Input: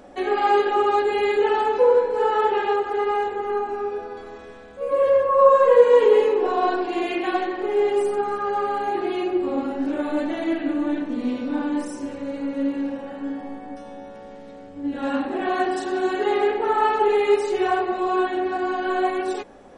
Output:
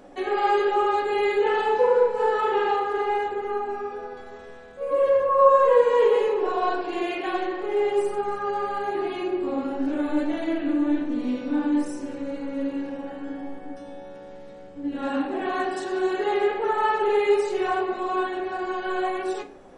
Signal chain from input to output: 1.42–3.18 flutter echo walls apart 6.6 m, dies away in 0.46 s; on a send at -6.5 dB: reverb RT60 0.50 s, pre-delay 6 ms; on the sum: gain -3 dB

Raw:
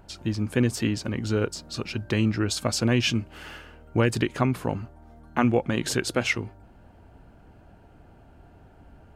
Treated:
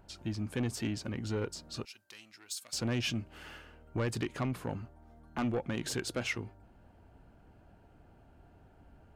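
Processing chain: soft clip -18.5 dBFS, distortion -13 dB; 1.85–2.73 differentiator; gain -7.5 dB

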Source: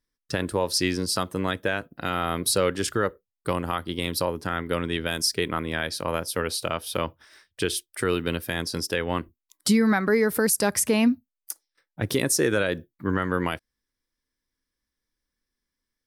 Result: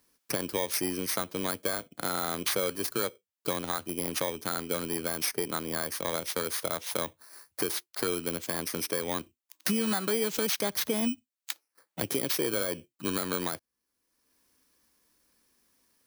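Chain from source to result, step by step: FFT order left unsorted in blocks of 16 samples; HPF 260 Hz 6 dB/oct; three-band squash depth 70%; gain -4.5 dB

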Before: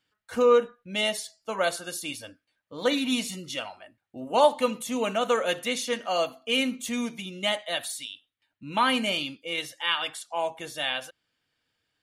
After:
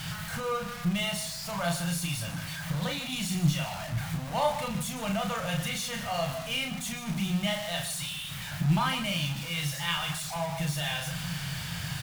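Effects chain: zero-crossing step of -25 dBFS; EQ curve 100 Hz 0 dB, 160 Hz +13 dB, 250 Hz -19 dB, 410 Hz -24 dB, 660 Hz -9 dB; added harmonics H 6 -26 dB, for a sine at -7 dBFS; on a send: loudspeakers at several distances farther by 12 m -4 dB, 52 m -12 dB

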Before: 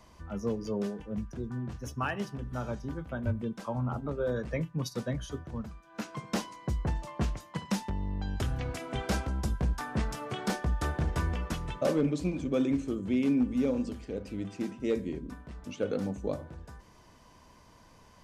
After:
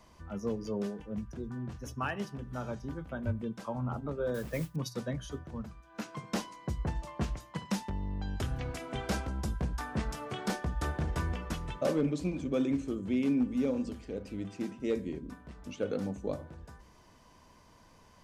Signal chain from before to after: 4.34–4.76 modulation noise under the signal 18 dB; notches 60/120 Hz; gain -2 dB

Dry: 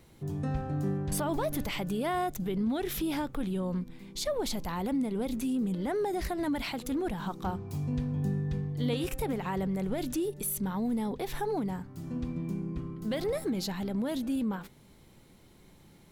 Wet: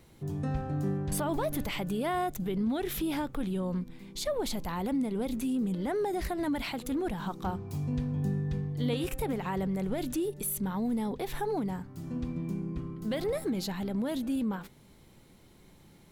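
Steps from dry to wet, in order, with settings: dynamic EQ 5500 Hz, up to -3 dB, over -54 dBFS, Q 2.2

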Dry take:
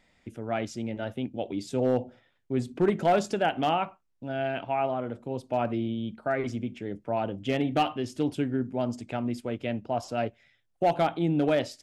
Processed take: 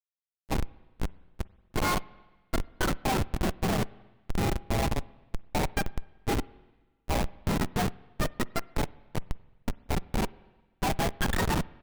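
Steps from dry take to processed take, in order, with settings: spectrum mirrored in octaves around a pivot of 740 Hz; Schmitt trigger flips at -24.5 dBFS; harmoniser -12 st -15 dB, -4 st -18 dB; on a send: reverb RT60 1.3 s, pre-delay 44 ms, DRR 21.5 dB; on the sum: gain +6 dB

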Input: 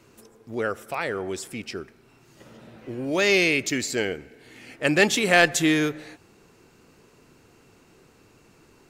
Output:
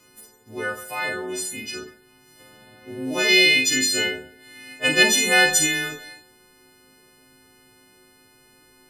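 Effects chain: frequency quantiser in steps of 3 st; Schroeder reverb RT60 0.37 s, combs from 27 ms, DRR 1.5 dB; 3.28–5.03 dynamic EQ 3500 Hz, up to +7 dB, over -31 dBFS, Q 1.5; gain -4 dB

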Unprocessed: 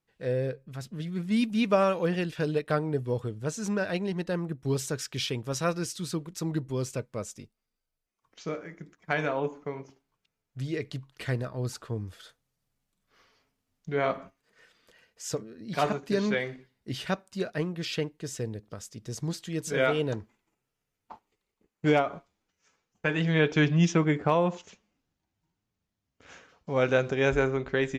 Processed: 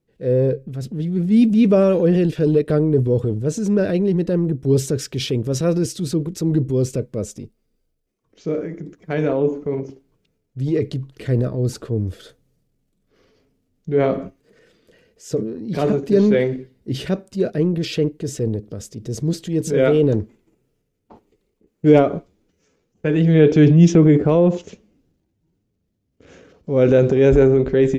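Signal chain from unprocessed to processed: resonant low shelf 630 Hz +11.5 dB, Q 1.5; transient shaper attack -3 dB, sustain +6 dB

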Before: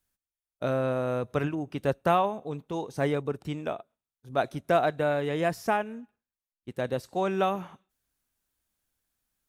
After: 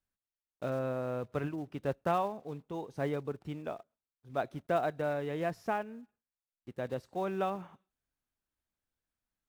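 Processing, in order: block floating point 5-bit; high shelf 4200 Hz -11.5 dB; gain -6.5 dB

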